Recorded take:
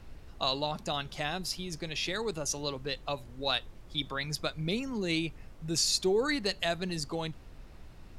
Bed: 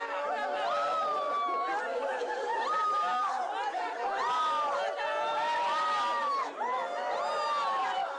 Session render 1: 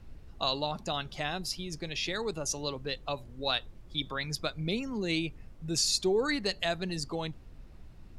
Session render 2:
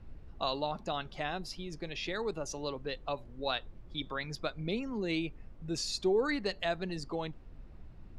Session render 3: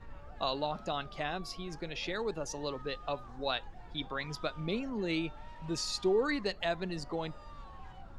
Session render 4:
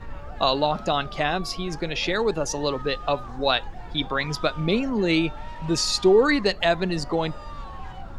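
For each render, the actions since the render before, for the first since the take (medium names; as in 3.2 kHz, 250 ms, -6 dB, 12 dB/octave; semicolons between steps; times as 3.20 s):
noise reduction 6 dB, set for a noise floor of -51 dBFS
low-pass 2 kHz 6 dB/octave; dynamic bell 110 Hz, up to -6 dB, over -51 dBFS, Q 0.85
add bed -23 dB
trim +12 dB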